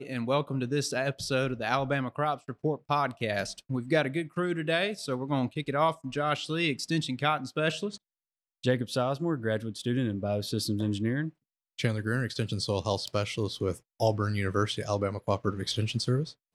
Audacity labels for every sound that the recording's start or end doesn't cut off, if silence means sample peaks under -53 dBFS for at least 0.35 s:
8.630000	11.300000	sound